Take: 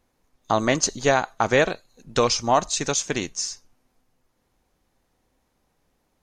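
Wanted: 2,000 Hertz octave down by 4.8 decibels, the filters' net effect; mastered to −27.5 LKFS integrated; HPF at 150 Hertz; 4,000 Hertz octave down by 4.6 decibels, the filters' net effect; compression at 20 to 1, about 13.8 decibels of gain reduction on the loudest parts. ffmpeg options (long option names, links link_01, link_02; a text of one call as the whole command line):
ffmpeg -i in.wav -af "highpass=150,equalizer=frequency=2000:width_type=o:gain=-5,equalizer=frequency=4000:width_type=o:gain=-5,acompressor=threshold=-28dB:ratio=20,volume=7dB" out.wav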